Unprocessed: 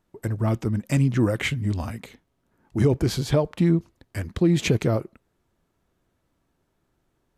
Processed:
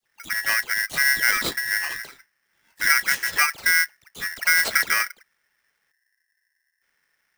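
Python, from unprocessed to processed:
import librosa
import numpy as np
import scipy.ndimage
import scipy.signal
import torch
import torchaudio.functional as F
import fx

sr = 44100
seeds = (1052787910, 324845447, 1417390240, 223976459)

y = fx.dispersion(x, sr, late='lows', ms=58.0, hz=1200.0)
y = fx.spec_box(y, sr, start_s=5.92, length_s=0.9, low_hz=260.0, high_hz=7400.0, gain_db=-27)
y = y * np.sign(np.sin(2.0 * np.pi * 1800.0 * np.arange(len(y)) / sr))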